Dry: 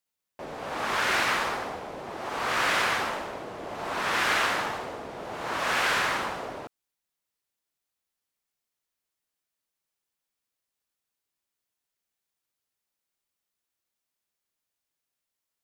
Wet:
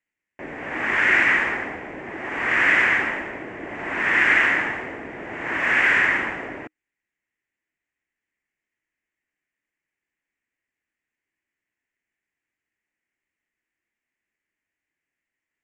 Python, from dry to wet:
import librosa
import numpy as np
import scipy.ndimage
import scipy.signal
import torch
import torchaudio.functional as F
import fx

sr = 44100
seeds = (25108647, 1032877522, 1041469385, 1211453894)

y = fx.curve_eq(x, sr, hz=(190.0, 310.0, 490.0, 1300.0, 1900.0, 2800.0, 4000.0, 7400.0, 12000.0), db=(0, 6, -3, -4, 12, 0, -19, -8, -28))
y = y * 10.0 ** (3.0 / 20.0)